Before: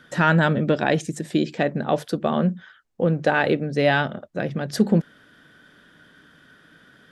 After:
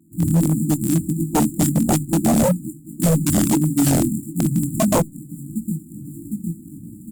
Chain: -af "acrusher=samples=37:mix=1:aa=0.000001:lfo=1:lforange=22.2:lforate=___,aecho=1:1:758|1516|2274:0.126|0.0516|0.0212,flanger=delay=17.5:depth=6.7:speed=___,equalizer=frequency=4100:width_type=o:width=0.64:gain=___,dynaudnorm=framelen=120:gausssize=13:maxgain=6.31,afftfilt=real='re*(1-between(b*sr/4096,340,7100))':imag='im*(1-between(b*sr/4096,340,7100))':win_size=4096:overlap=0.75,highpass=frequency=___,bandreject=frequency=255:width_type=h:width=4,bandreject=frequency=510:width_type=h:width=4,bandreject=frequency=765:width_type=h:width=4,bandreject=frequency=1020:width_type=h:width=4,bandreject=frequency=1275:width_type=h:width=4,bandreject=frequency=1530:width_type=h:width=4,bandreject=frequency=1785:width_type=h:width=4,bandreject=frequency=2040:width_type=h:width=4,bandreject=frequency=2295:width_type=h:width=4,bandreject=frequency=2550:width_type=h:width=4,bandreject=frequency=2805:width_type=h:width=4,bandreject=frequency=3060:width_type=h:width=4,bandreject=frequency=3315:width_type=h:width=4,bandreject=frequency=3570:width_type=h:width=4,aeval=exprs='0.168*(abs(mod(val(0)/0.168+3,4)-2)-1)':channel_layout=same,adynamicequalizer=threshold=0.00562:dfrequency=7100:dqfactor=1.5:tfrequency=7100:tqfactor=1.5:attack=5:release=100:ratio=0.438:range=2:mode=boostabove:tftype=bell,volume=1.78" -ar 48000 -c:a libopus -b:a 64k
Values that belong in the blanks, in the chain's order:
2.3, 1.6, -4, 110